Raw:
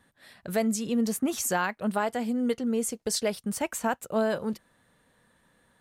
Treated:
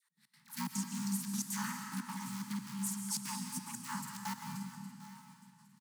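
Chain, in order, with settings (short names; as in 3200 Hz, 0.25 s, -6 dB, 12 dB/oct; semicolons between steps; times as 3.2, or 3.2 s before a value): cycle switcher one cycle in 3, inverted; doubler 50 ms -4 dB; on a send: feedback echo 0.812 s, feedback 31%, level -16.5 dB; on the sum: FFT band-reject 130–710 Hz; low shelf 92 Hz +12 dB; dispersion lows, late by 0.1 s, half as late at 690 Hz; step gate "x.x.xxxx.x.xxx" 180 bpm -24 dB; frequency shift +120 Hz; band shelf 1800 Hz -8.5 dB 2.3 oct; digital reverb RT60 1.9 s, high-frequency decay 0.95×, pre-delay 95 ms, DRR 4 dB; gain -7 dB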